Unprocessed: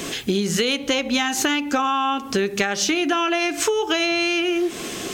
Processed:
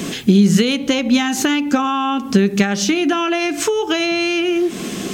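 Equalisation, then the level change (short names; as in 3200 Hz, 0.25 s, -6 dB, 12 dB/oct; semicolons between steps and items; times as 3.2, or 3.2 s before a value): bell 200 Hz +12.5 dB 0.96 oct; +1.0 dB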